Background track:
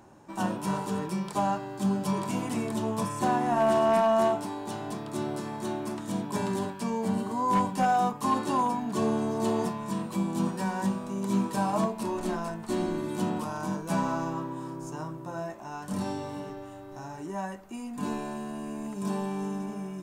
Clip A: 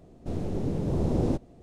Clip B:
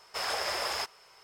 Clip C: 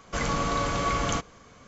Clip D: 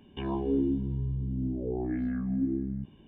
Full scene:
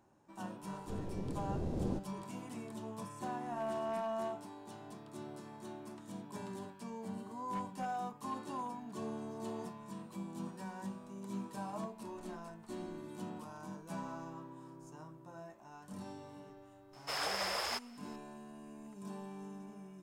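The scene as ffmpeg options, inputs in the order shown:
ffmpeg -i bed.wav -i cue0.wav -i cue1.wav -filter_complex "[0:a]volume=-15dB[link_01];[1:a]atrim=end=1.62,asetpts=PTS-STARTPTS,volume=-11.5dB,afade=type=in:duration=0.004:curve=hsin,afade=type=out:start_time=1.616:duration=0.004:curve=hsin,adelay=620[link_02];[2:a]atrim=end=1.23,asetpts=PTS-STARTPTS,volume=-4.5dB,afade=type=in:duration=0.004:curve=hsin,afade=type=out:start_time=1.226:duration=0.004:curve=hsin,adelay=16930[link_03];[link_01][link_02][link_03]amix=inputs=3:normalize=0" out.wav

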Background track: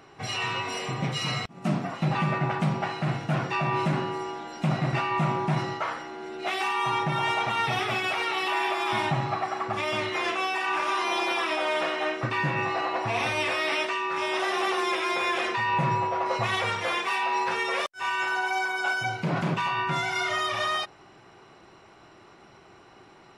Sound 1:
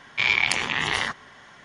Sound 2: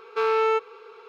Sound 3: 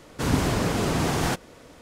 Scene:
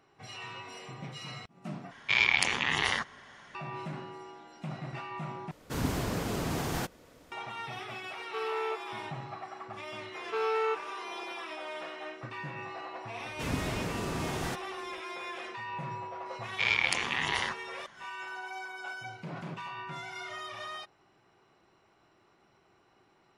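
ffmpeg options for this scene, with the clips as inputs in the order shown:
ffmpeg -i bed.wav -i cue0.wav -i cue1.wav -i cue2.wav -filter_complex "[1:a]asplit=2[link_01][link_02];[3:a]asplit=2[link_03][link_04];[2:a]asplit=2[link_05][link_06];[0:a]volume=-13.5dB[link_07];[link_03]equalizer=frequency=14000:width=3.6:gain=10.5[link_08];[link_07]asplit=3[link_09][link_10][link_11];[link_09]atrim=end=1.914[link_12];[link_01]atrim=end=1.64,asetpts=PTS-STARTPTS,volume=-4dB[link_13];[link_10]atrim=start=3.546:end=5.514[link_14];[link_08]atrim=end=1.81,asetpts=PTS-STARTPTS,volume=-8.5dB[link_15];[link_11]atrim=start=7.316[link_16];[link_05]atrim=end=1.08,asetpts=PTS-STARTPTS,volume=-12.5dB,afade=type=in:duration=0.004:curve=hsin,afade=type=out:start_time=1.076:duration=0.004:curve=hsin,adelay=8170[link_17];[link_06]atrim=end=1.08,asetpts=PTS-STARTPTS,volume=-8dB,afade=type=in:duration=0.004:curve=hsin,afade=type=out:start_time=1.076:duration=0.004:curve=hsin,adelay=10160[link_18];[link_04]atrim=end=1.81,asetpts=PTS-STARTPTS,volume=-10.5dB,afade=type=in:duration=0.004:curve=hsin,afade=type=out:start_time=1.806:duration=0.004:curve=hsin,adelay=13200[link_19];[link_02]atrim=end=1.64,asetpts=PTS-STARTPTS,volume=-6.5dB,afade=type=in:duration=0.004:curve=hsin,afade=type=out:start_time=1.636:duration=0.004:curve=hsin,adelay=16410[link_20];[link_12][link_13]acrossfade=duration=0.004:curve1=hsin:curve2=hsin[link_21];[link_21][link_14]acrossfade=duration=0.004:curve1=hsin:curve2=hsin[link_22];[link_22][link_15]acrossfade=duration=0.004:curve1=hsin:curve2=hsin[link_23];[link_23][link_16]acrossfade=duration=0.004:curve1=hsin:curve2=hsin[link_24];[link_24][link_17][link_18][link_19][link_20]amix=inputs=5:normalize=0" out.wav

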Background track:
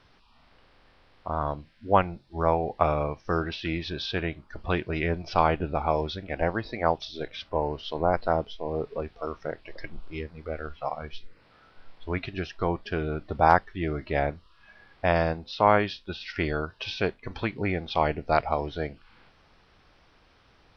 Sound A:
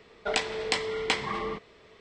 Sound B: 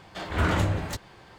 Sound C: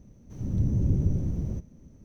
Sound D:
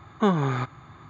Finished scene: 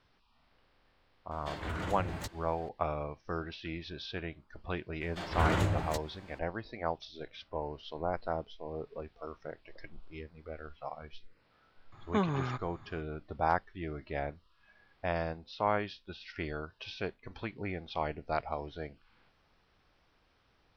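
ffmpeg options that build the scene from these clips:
ffmpeg -i bed.wav -i cue0.wav -i cue1.wav -i cue2.wav -i cue3.wav -filter_complex "[2:a]asplit=2[link_01][link_02];[0:a]volume=-10dB[link_03];[link_01]acompressor=threshold=-26dB:ratio=6:attack=3.2:release=140:knee=1:detection=peak,atrim=end=1.38,asetpts=PTS-STARTPTS,volume=-6.5dB,afade=type=in:duration=0.004:curve=hsin,afade=type=out:start_time=1.376:duration=0.004:curve=hsin,adelay=1310[link_04];[link_02]atrim=end=1.38,asetpts=PTS-STARTPTS,volume=-5dB,afade=type=in:duration=0.004:curve=hsin,afade=type=out:start_time=1.376:duration=0.004:curve=hsin,adelay=220941S[link_05];[4:a]atrim=end=1.09,asetpts=PTS-STARTPTS,volume=-8.5dB,afade=type=in:duration=0.004:curve=hsin,afade=type=out:start_time=1.086:duration=0.004:curve=hsin,adelay=11920[link_06];[link_03][link_04][link_05][link_06]amix=inputs=4:normalize=0" out.wav

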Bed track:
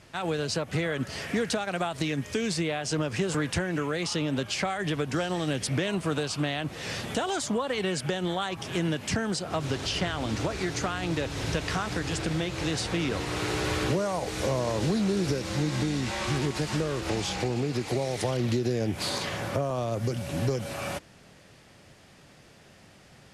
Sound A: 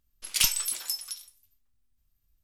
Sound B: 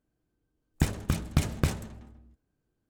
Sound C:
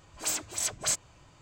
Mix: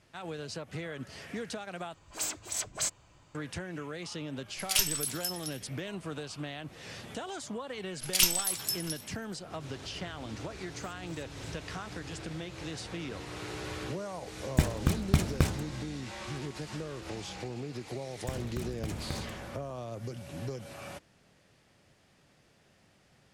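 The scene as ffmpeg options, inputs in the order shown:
ffmpeg -i bed.wav -i cue0.wav -i cue1.wav -i cue2.wav -filter_complex "[3:a]asplit=2[link_01][link_02];[1:a]asplit=2[link_03][link_04];[2:a]asplit=2[link_05][link_06];[0:a]volume=-10.5dB[link_07];[link_04]asplit=2[link_08][link_09];[link_09]adelay=641.4,volume=-23dB,highshelf=frequency=4000:gain=-14.4[link_10];[link_08][link_10]amix=inputs=2:normalize=0[link_11];[link_02]acompressor=threshold=-48dB:ratio=6:attack=3.2:release=140:knee=1:detection=peak[link_12];[link_06]acompressor=threshold=-28dB:ratio=6:attack=3.2:release=140:knee=1:detection=peak[link_13];[link_07]asplit=2[link_14][link_15];[link_14]atrim=end=1.944[link_16];[link_01]atrim=end=1.41,asetpts=PTS-STARTPTS,volume=-3.5dB[link_17];[link_15]atrim=start=3.346[link_18];[link_03]atrim=end=2.43,asetpts=PTS-STARTPTS,volume=-3.5dB,afade=type=in:duration=0.004:curve=hsin,afade=type=out:start_time=2.426:duration=0.004:curve=hsin,adelay=4350[link_19];[link_11]atrim=end=2.43,asetpts=PTS-STARTPTS,volume=-1dB,afade=type=in:duration=0.004:curve=hsin,afade=type=out:start_time=2.426:duration=0.004:curve=hsin,adelay=7790[link_20];[link_12]atrim=end=1.41,asetpts=PTS-STARTPTS,volume=-7dB,afade=type=in:duration=0.004:curve=hsin,afade=type=out:start_time=1.406:duration=0.004:curve=hsin,adelay=10560[link_21];[link_05]atrim=end=2.89,asetpts=PTS-STARTPTS,afade=type=in:duration=0.004:curve=hsin,afade=type=out:start_time=2.886:duration=0.004:curve=hsin,adelay=13770[link_22];[link_13]atrim=end=2.89,asetpts=PTS-STARTPTS,volume=-3dB,afade=type=in:duration=0.004:curve=hsin,afade=type=out:start_time=2.886:duration=0.004:curve=hsin,adelay=17470[link_23];[link_16][link_17]acrossfade=duration=0.004:curve1=hsin:curve2=hsin[link_24];[link_24][link_18]acrossfade=duration=0.004:curve1=hsin:curve2=hsin[link_25];[link_25][link_19][link_20][link_21][link_22][link_23]amix=inputs=6:normalize=0" out.wav

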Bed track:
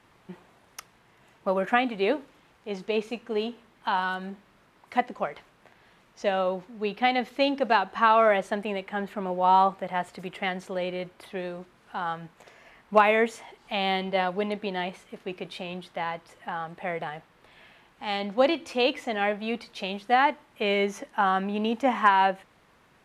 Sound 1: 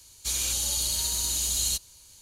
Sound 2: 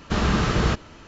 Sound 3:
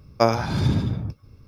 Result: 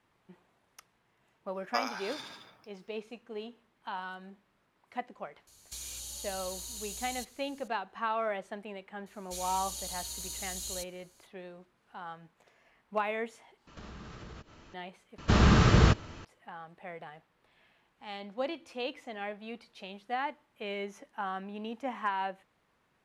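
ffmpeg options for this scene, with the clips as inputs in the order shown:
ffmpeg -i bed.wav -i cue0.wav -i cue1.wav -i cue2.wav -filter_complex "[1:a]asplit=2[link_01][link_02];[2:a]asplit=2[link_03][link_04];[0:a]volume=-12.5dB[link_05];[3:a]highpass=1100[link_06];[link_01]acompressor=threshold=-31dB:ratio=6:attack=3.2:release=140:knee=1:detection=peak[link_07];[link_03]acompressor=threshold=-35dB:ratio=6:attack=3.2:release=140:knee=1:detection=peak[link_08];[link_04]equalizer=frequency=100:width=1.5:gain=6[link_09];[link_05]asplit=3[link_10][link_11][link_12];[link_10]atrim=end=13.674[link_13];[link_08]atrim=end=1.07,asetpts=PTS-STARTPTS,volume=-9.5dB[link_14];[link_11]atrim=start=14.736:end=15.184[link_15];[link_09]atrim=end=1.07,asetpts=PTS-STARTPTS,volume=-2dB[link_16];[link_12]atrim=start=16.246[link_17];[link_06]atrim=end=1.47,asetpts=PTS-STARTPTS,volume=-7dB,afade=type=in:duration=0.004:curve=hsin,afade=type=out:start_time=1.466:duration=0.004:curve=hsin,adelay=1540[link_18];[link_07]atrim=end=2.21,asetpts=PTS-STARTPTS,volume=-7.5dB,afade=type=in:duration=0.004:curve=hsin,afade=type=out:start_time=2.206:duration=0.004:curve=hsin,adelay=5470[link_19];[link_02]atrim=end=2.21,asetpts=PTS-STARTPTS,volume=-12.5dB,afade=type=in:duration=0.004:curve=hsin,afade=type=out:start_time=2.206:duration=0.004:curve=hsin,adelay=399546S[link_20];[link_13][link_14]acrossfade=duration=0.004:curve1=hsin:curve2=hsin[link_21];[link_21][link_15]acrossfade=duration=0.004:curve1=hsin:curve2=hsin[link_22];[link_22][link_16]acrossfade=duration=0.004:curve1=hsin:curve2=hsin[link_23];[link_23][link_17]acrossfade=duration=0.004:curve1=hsin:curve2=hsin[link_24];[link_24][link_18][link_19][link_20]amix=inputs=4:normalize=0" out.wav

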